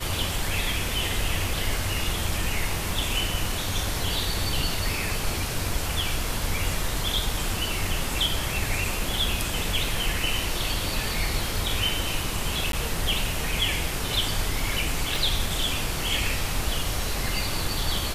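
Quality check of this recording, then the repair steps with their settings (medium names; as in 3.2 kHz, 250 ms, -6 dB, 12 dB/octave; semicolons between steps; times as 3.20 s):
12.72–12.73 s: dropout 12 ms
15.16 s: pop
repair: de-click; interpolate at 12.72 s, 12 ms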